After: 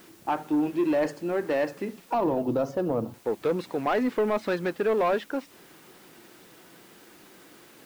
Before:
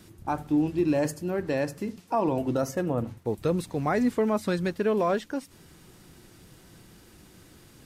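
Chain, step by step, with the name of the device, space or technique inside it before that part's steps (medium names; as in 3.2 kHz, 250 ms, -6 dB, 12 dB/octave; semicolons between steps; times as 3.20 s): tape answering machine (band-pass 320–3200 Hz; saturation -23 dBFS, distortion -14 dB; wow and flutter; white noise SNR 29 dB); 2.14–3.14 s: graphic EQ 125/2000/8000 Hz +9/-12/-5 dB; trim +5 dB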